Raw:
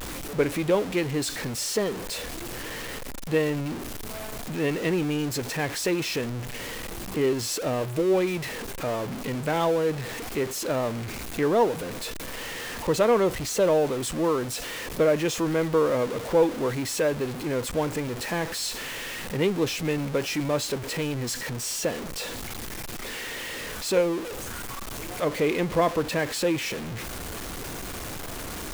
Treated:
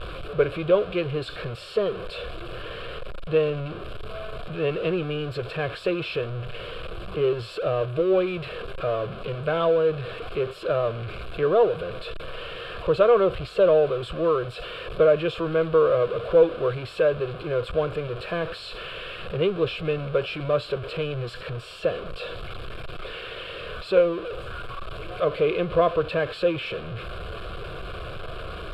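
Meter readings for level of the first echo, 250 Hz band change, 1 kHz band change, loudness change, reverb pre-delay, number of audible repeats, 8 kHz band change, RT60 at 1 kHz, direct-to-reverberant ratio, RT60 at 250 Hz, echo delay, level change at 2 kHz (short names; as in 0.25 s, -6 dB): none, -4.0 dB, 0.0 dB, +2.0 dB, none, none, under -20 dB, none, none, none, none, -1.5 dB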